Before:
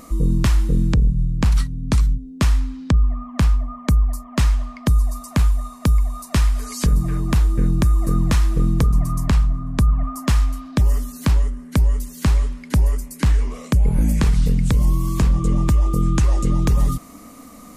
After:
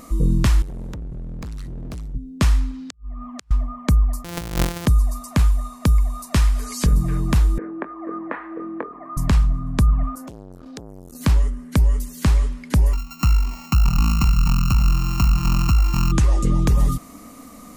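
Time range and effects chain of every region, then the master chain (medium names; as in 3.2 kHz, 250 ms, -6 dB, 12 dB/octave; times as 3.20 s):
0.62–2.15 s: compression 12:1, threshold -22 dBFS + overload inside the chain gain 29 dB
2.71–3.51 s: compression 12:1, threshold -27 dBFS + inverted gate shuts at -19 dBFS, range -31 dB
4.24–4.86 s: sorted samples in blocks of 256 samples + treble shelf 3.7 kHz +7 dB + compressor with a negative ratio -21 dBFS, ratio -0.5
7.58–9.17 s: elliptic band-pass 320–1900 Hz, stop band 50 dB + doubling 22 ms -11 dB
10.15–11.21 s: peaking EQ 1.5 kHz -6.5 dB 2 oct + compression 12:1, threshold -29 dBFS + transformer saturation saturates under 1.3 kHz
12.93–16.12 s: sorted samples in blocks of 32 samples + treble shelf 8.4 kHz +5 dB + static phaser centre 2.4 kHz, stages 8
whole clip: none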